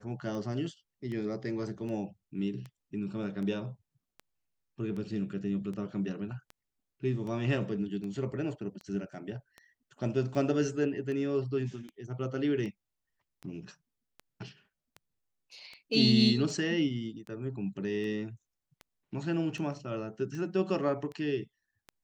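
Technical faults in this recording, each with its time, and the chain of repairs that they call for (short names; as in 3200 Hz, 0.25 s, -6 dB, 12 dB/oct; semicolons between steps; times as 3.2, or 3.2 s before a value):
tick 78 rpm -30 dBFS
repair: de-click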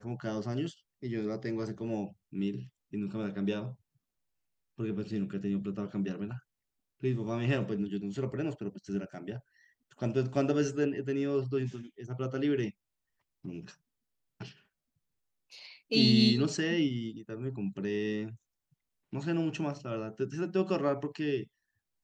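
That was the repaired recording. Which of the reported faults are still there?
none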